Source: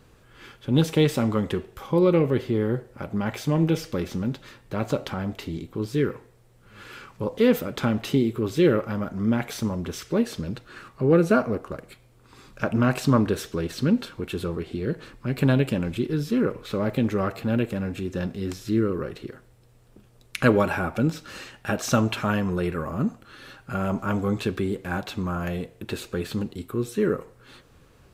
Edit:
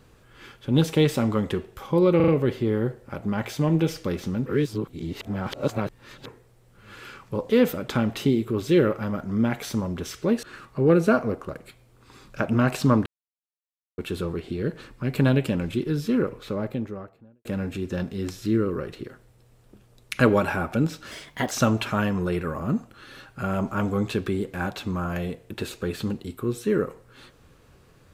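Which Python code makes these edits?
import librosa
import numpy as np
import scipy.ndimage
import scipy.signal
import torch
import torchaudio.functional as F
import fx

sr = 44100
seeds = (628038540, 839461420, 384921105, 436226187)

y = fx.studio_fade_out(x, sr, start_s=16.34, length_s=1.34)
y = fx.edit(y, sr, fx.stutter(start_s=2.16, slice_s=0.04, count=4),
    fx.reverse_span(start_s=4.34, length_s=1.8),
    fx.cut(start_s=10.31, length_s=0.35),
    fx.silence(start_s=13.29, length_s=0.92),
    fx.speed_span(start_s=21.34, length_s=0.48, speed=1.2), tone=tone)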